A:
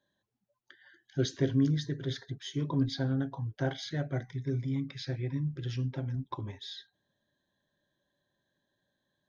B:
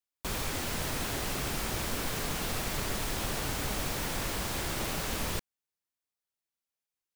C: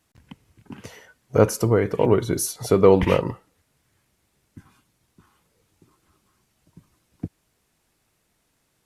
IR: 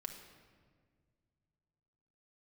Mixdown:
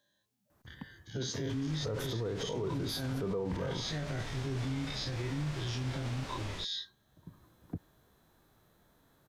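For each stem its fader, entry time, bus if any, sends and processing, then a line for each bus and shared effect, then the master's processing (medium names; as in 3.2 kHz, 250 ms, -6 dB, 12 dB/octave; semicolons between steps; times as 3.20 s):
-9.5 dB, 0.00 s, no send, every event in the spectrogram widened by 60 ms; treble shelf 2.5 kHz +11.5 dB
-12.5 dB, 1.25 s, no send, low-pass 5.5 kHz 12 dB/octave
+0.5 dB, 0.50 s, no send, high-order bell 4.7 kHz -12.5 dB 2.7 oct; auto duck -9 dB, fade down 1.90 s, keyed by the first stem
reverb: none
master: harmonic-percussive split harmonic +7 dB; peak limiter -27.5 dBFS, peak gain reduction 21 dB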